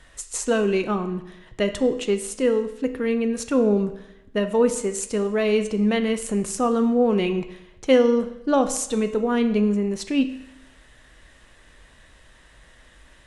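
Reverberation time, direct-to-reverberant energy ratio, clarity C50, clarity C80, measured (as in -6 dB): 0.85 s, 8.0 dB, 11.5 dB, 14.0 dB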